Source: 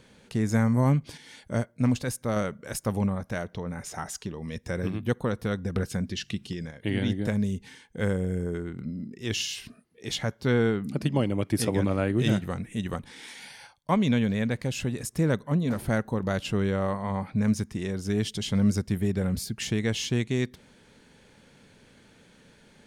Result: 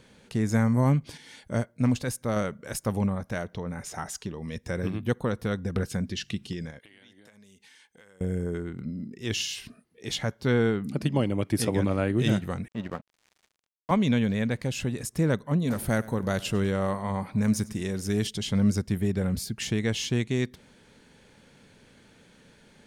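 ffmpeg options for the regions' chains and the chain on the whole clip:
ffmpeg -i in.wav -filter_complex "[0:a]asettb=1/sr,asplit=3[link_01][link_02][link_03];[link_01]atrim=end=6.794[link_04];[link_02]atrim=start=6.79:end=8.21,asetpts=PTS-STARTPTS,afade=type=in:duration=0.004:curve=qsin,afade=type=out:start_time=1.416:duration=0.004:curve=qsin,highpass=frequency=1400:poles=1,acompressor=threshold=-51dB:ratio=8:attack=3.2:release=140:knee=1:detection=peak[link_05];[link_03]atrim=start=8.206[link_06];[link_04][link_05]acrossfade=duration=0.004:curve1=hsin:curve2=qsin[link_07];[link_07][link_06]acrossfade=duration=0.004:curve1=qsin:curve2=hsin,asettb=1/sr,asplit=3[link_08][link_09][link_10];[link_08]atrim=end=12.684[link_11];[link_09]atrim=start=12.68:end=13.91,asetpts=PTS-STARTPTS,afade=type=in:duration=0.004:curve=qsin,afade=type=out:start_time=1.226:duration=0.004:curve=qsin,highpass=130,lowpass=2400,aeval=exprs='sgn(val(0))*max(abs(val(0))-0.00794,0)':channel_layout=same[link_12];[link_10]atrim=start=13.906[link_13];[link_11][link_12]acrossfade=duration=0.004:curve1=hsin:curve2=qsin[link_14];[link_14][link_13]acrossfade=duration=0.004:curve1=qsin:curve2=hsin,asettb=1/sr,asplit=3[link_15][link_16][link_17];[link_15]atrim=end=15.624[link_18];[link_16]atrim=start=15.62:end=18.27,asetpts=PTS-STARTPTS,afade=type=in:duration=0.004:curve=qsin,afade=type=out:start_time=2.646:duration=0.004:curve=qsin,highshelf=frequency=7700:gain=11,aecho=1:1:99|198|297|396:0.0944|0.0519|0.0286|0.0157,atrim=end_sample=116865[link_19];[link_17]atrim=start=18.266[link_20];[link_18][link_19]acrossfade=duration=0.004:curve1=hsin:curve2=qsin[link_21];[link_21][link_20]acrossfade=duration=0.004:curve1=qsin:curve2=hsin" out.wav

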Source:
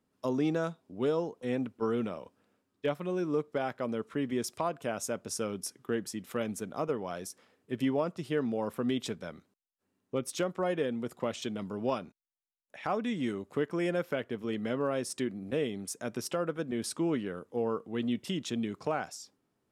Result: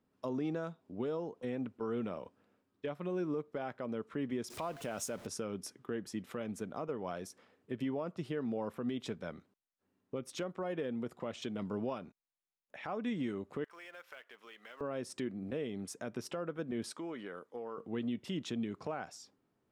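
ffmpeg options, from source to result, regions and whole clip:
ffmpeg -i in.wav -filter_complex "[0:a]asettb=1/sr,asplit=3[link_01][link_02][link_03];[link_01]atrim=end=4.504[link_04];[link_02]atrim=start=4.5:end=5.27,asetpts=PTS-STARTPTS,afade=type=in:duration=0.004:curve=qsin,afade=type=out:start_time=0.766:duration=0.004:curve=qsin,aeval=exprs='val(0)+0.5*0.00596*sgn(val(0))':channel_layout=same,highshelf=frequency=4300:gain=11[link_05];[link_03]atrim=start=5.266[link_06];[link_04][link_05]acrossfade=duration=0.004:curve1=hsin:curve2=qsin[link_07];[link_07][link_06]acrossfade=duration=0.004:curve1=qsin:curve2=hsin,asettb=1/sr,asplit=3[link_08][link_09][link_10];[link_08]atrim=end=13.644[link_11];[link_09]atrim=start=13.64:end=14.81,asetpts=PTS-STARTPTS,afade=type=in:duration=0.004:curve=qsin,afade=type=out:start_time=1.166:duration=0.004:curve=qsin,highpass=1200,acompressor=threshold=-50dB:ratio=2.5:attack=3.2:release=140:knee=1:detection=peak,acrusher=bits=3:mode=log:mix=0:aa=0.000001[link_12];[link_10]atrim=start=14.806[link_13];[link_11][link_12]acrossfade=duration=0.004:curve1=hsin:curve2=qsin[link_14];[link_14][link_13]acrossfade=duration=0.004:curve1=qsin:curve2=hsin,asettb=1/sr,asplit=3[link_15][link_16][link_17];[link_15]atrim=end=16.924[link_18];[link_16]atrim=start=16.92:end=17.78,asetpts=PTS-STARTPTS,afade=type=in:duration=0.004:curve=qsin,afade=type=out:start_time=0.856:duration=0.004:curve=qsin,highpass=frequency=720:poles=1,bandreject=frequency=2700:width=9.8,acompressor=threshold=-38dB:ratio=5:attack=3.2:release=140:knee=1:detection=peak[link_19];[link_17]atrim=start=17.776[link_20];[link_18][link_19]acrossfade=duration=0.004:curve1=hsin:curve2=qsin[link_21];[link_21][link_20]acrossfade=duration=0.004:curve1=qsin:curve2=hsin,highshelf=frequency=5300:gain=-11.5,alimiter=level_in=4dB:limit=-24dB:level=0:latency=1:release=213,volume=-4dB" out.wav

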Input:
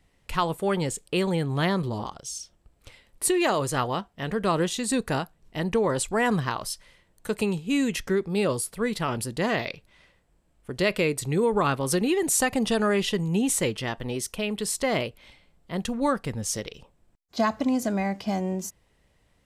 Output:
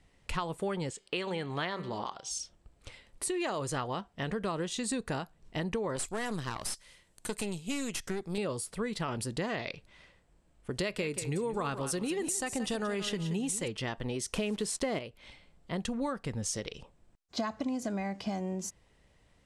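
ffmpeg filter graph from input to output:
ffmpeg -i in.wav -filter_complex "[0:a]asettb=1/sr,asplit=3[link_01][link_02][link_03];[link_01]atrim=end=0.904[link_04];[link_02]atrim=start=0.9:end=2.31,asetpts=PTS-STARTPTS,afade=type=in:duration=0.004:curve=qsin,afade=type=out:start_time=1.406:duration=0.004:curve=qsin,lowpass=2900,aemphasis=mode=production:type=riaa,bandreject=frequency=194.2:width_type=h:width=4,bandreject=frequency=388.4:width_type=h:width=4,bandreject=frequency=582.6:width_type=h:width=4,bandreject=frequency=776.8:width_type=h:width=4,bandreject=frequency=971:width_type=h:width=4,bandreject=frequency=1165.2:width_type=h:width=4,bandreject=frequency=1359.4:width_type=h:width=4,bandreject=frequency=1553.6:width_type=h:width=4,bandreject=frequency=1747.8:width_type=h:width=4,bandreject=frequency=1942:width_type=h:width=4,bandreject=frequency=2136.2:width_type=h:width=4,bandreject=frequency=2330.4:width_type=h:width=4,bandreject=frequency=2524.6:width_type=h:width=4,bandreject=frequency=2718.8:width_type=h:width=4,bandreject=frequency=2913:width_type=h:width=4,bandreject=frequency=3107.2:width_type=h:width=4,bandreject=frequency=3301.4:width_type=h:width=4,bandreject=frequency=3495.6:width_type=h:width=4,bandreject=frequency=3689.8:width_type=h:width=4,bandreject=frequency=3884:width_type=h:width=4,bandreject=frequency=4078.2:width_type=h:width=4,bandreject=frequency=4272.4:width_type=h:width=4,bandreject=frequency=4466.6:width_type=h:width=4,bandreject=frequency=4660.8:width_type=h:width=4,bandreject=frequency=4855:width_type=h:width=4,bandreject=frequency=5049.2:width_type=h:width=4[link_05];[link_03]atrim=start=2.306[link_06];[link_04][link_05]acrossfade=duration=0.004:curve1=hsin:curve2=qsin[link_07];[link_07][link_06]acrossfade=duration=0.004:curve1=qsin:curve2=hsin,asettb=1/sr,asplit=3[link_08][link_09][link_10];[link_08]atrim=end=5.964[link_11];[link_09]atrim=start=5.96:end=8.38,asetpts=PTS-STARTPTS,afade=type=in:duration=0.004:curve=qsin,afade=type=out:start_time=2.416:duration=0.004:curve=qsin,aemphasis=mode=production:type=75kf,aeval=exprs='(tanh(12.6*val(0)+0.75)-tanh(0.75))/12.6':channel_layout=same[link_12];[link_10]atrim=start=8.376[link_13];[link_11][link_12]acrossfade=duration=0.004:curve1=hsin:curve2=qsin[link_14];[link_14][link_13]acrossfade=duration=0.004:curve1=qsin:curve2=hsin,asettb=1/sr,asplit=3[link_15][link_16][link_17];[link_15]atrim=end=10.724[link_18];[link_16]atrim=start=10.72:end=13.68,asetpts=PTS-STARTPTS,afade=type=in:duration=0.004:curve=qsin,afade=type=out:start_time=2.956:duration=0.004:curve=qsin,highshelf=frequency=6900:gain=7,aecho=1:1:178|356|534:0.237|0.0545|0.0125,atrim=end_sample=130536[link_19];[link_17]atrim=start=13.676[link_20];[link_18][link_19]acrossfade=duration=0.004:curve1=hsin:curve2=qsin[link_21];[link_21][link_20]acrossfade=duration=0.004:curve1=qsin:curve2=hsin,asettb=1/sr,asplit=3[link_22][link_23][link_24];[link_22]atrim=end=14.334[link_25];[link_23]atrim=start=14.33:end=14.99,asetpts=PTS-STARTPTS,afade=type=in:duration=0.004:curve=qsin,afade=type=out:start_time=0.656:duration=0.004:curve=qsin,equalizer=frequency=320:width_type=o:width=1.8:gain=5,acontrast=25,acrusher=bits=7:dc=4:mix=0:aa=0.000001[link_26];[link_24]atrim=start=14.986[link_27];[link_25][link_26]acrossfade=duration=0.004:curve1=hsin:curve2=qsin[link_28];[link_28][link_27]acrossfade=duration=0.004:curve1=qsin:curve2=hsin,acompressor=threshold=-31dB:ratio=5,lowpass=frequency=9900:width=0.5412,lowpass=frequency=9900:width=1.3066" out.wav

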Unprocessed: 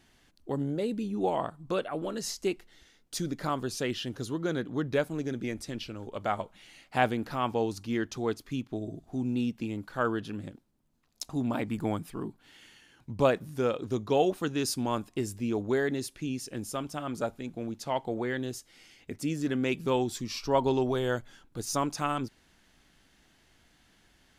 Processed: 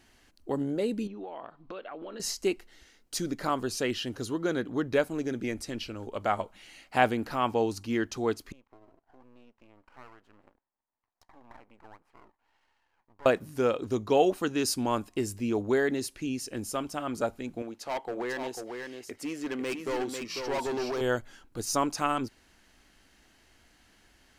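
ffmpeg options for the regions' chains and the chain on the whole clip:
ffmpeg -i in.wav -filter_complex "[0:a]asettb=1/sr,asplit=3[link_01][link_02][link_03];[link_01]atrim=end=1.074[link_04];[link_02]atrim=start=1.07:end=2.2,asetpts=PTS-STARTPTS,afade=type=in:duration=0.004:curve=qsin,afade=type=out:start_time=1.126:duration=0.004:curve=qsin,lowpass=frequency=4300:width=0.5412,lowpass=frequency=4300:width=1.3066,equalizer=frequency=83:width_type=o:width=2.3:gain=-13,acompressor=threshold=-39dB:ratio=8:attack=3.2:release=140:knee=1:detection=peak[link_05];[link_03]atrim=start=2.196[link_06];[link_04][link_05]acrossfade=duration=0.004:curve1=hsin:curve2=qsin[link_07];[link_07][link_06]acrossfade=duration=0.004:curve1=qsin:curve2=hsin,asettb=1/sr,asplit=3[link_08][link_09][link_10];[link_08]atrim=end=8.524[link_11];[link_09]atrim=start=8.52:end=13.26,asetpts=PTS-STARTPTS,afade=type=in:duration=0.004:curve=qsin,afade=type=out:start_time=4.736:duration=0.004:curve=qsin,bandpass=frequency=920:width_type=q:width=3.5,aeval=exprs='max(val(0),0)':channel_layout=same,acompressor=threshold=-54dB:ratio=2:attack=3.2:release=140:knee=1:detection=peak[link_12];[link_10]atrim=start=13.256[link_13];[link_11][link_12]acrossfade=duration=0.004:curve1=hsin:curve2=qsin[link_14];[link_14][link_13]acrossfade=duration=0.004:curve1=qsin:curve2=hsin,asettb=1/sr,asplit=3[link_15][link_16][link_17];[link_15]atrim=end=17.624[link_18];[link_16]atrim=start=17.62:end=21.01,asetpts=PTS-STARTPTS,afade=type=in:duration=0.004:curve=qsin,afade=type=out:start_time=3.386:duration=0.004:curve=qsin,bass=frequency=250:gain=-14,treble=frequency=4000:gain=-5,asoftclip=type=hard:threshold=-30.5dB,aecho=1:1:496:0.531,atrim=end_sample=149499[link_19];[link_17]atrim=start=21.006[link_20];[link_18][link_19]acrossfade=duration=0.004:curve1=hsin:curve2=qsin[link_21];[link_21][link_20]acrossfade=duration=0.004:curve1=qsin:curve2=hsin,equalizer=frequency=150:width=2.1:gain=-7.5,bandreject=frequency=3500:width=13,volume=2.5dB" out.wav

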